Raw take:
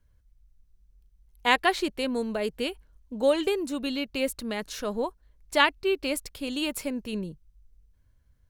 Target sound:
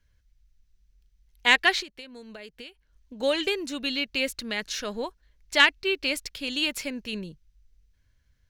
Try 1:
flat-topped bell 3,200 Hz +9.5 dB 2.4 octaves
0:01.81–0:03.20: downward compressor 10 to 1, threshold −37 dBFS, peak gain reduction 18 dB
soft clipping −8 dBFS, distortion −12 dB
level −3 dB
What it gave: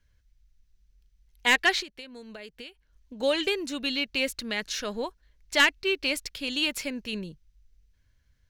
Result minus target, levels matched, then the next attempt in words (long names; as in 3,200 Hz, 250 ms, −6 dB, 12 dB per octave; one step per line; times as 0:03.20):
soft clipping: distortion +10 dB
flat-topped bell 3,200 Hz +9.5 dB 2.4 octaves
0:01.81–0:03.20: downward compressor 10 to 1, threshold −37 dBFS, peak gain reduction 18 dB
soft clipping 0 dBFS, distortion −22 dB
level −3 dB